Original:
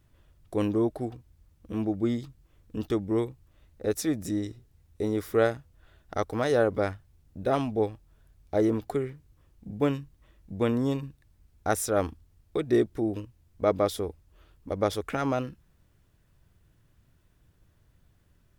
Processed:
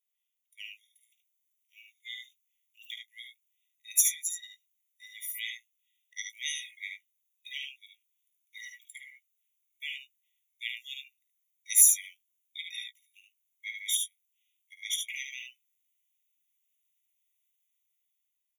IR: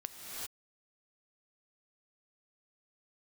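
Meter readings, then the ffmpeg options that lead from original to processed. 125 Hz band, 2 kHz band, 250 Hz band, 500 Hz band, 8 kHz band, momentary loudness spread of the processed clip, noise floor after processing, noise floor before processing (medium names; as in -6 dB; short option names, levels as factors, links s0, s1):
under -40 dB, -0.5 dB, under -40 dB, under -40 dB, +14.5 dB, 22 LU, -81 dBFS, -65 dBFS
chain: -filter_complex "[0:a]bandreject=f=1700:w=6.8,afftdn=nr=19:nf=-45,afreqshift=14,dynaudnorm=f=190:g=9:m=2,afreqshift=-53,aemphasis=mode=production:type=50fm,asplit=2[s0][s1];[s1]adelay=17,volume=0.299[s2];[s0][s2]amix=inputs=2:normalize=0,aecho=1:1:52|74:0.355|0.531,afftfilt=real='re*eq(mod(floor(b*sr/1024/1900),2),1)':imag='im*eq(mod(floor(b*sr/1024/1900),2),1)':win_size=1024:overlap=0.75"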